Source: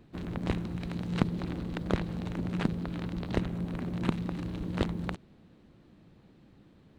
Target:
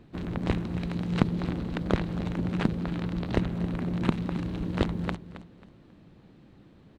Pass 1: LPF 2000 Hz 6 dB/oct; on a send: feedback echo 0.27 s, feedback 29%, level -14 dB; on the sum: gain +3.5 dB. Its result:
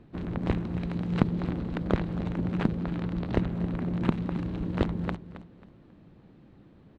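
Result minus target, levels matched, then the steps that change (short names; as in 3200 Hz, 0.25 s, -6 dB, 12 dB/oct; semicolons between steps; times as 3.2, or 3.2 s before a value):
8000 Hz band -8.0 dB
change: LPF 6800 Hz 6 dB/oct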